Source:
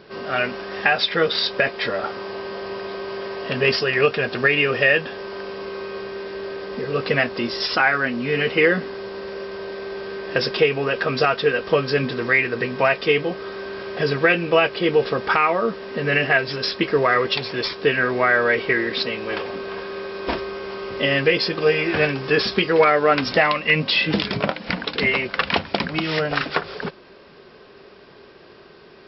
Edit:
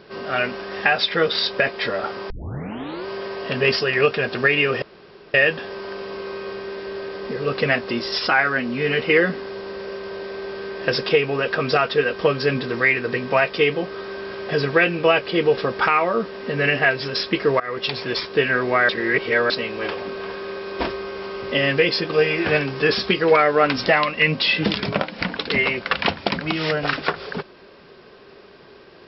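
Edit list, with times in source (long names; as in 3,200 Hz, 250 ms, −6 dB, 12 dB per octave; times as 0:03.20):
0:02.30: tape start 0.76 s
0:04.82: splice in room tone 0.52 s
0:17.08–0:17.42: fade in, from −22 dB
0:18.37–0:18.98: reverse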